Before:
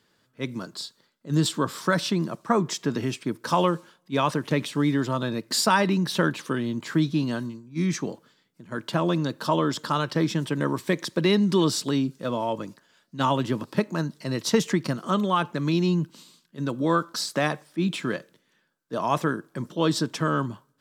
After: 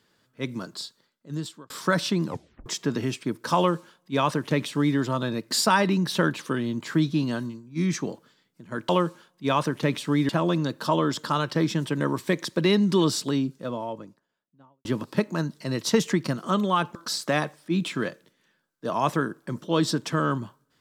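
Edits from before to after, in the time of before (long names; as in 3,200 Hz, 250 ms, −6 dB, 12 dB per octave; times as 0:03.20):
0:00.76–0:01.70: fade out linear
0:02.25: tape stop 0.41 s
0:03.57–0:04.97: duplicate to 0:08.89
0:11.64–0:13.45: fade out and dull
0:15.55–0:17.03: remove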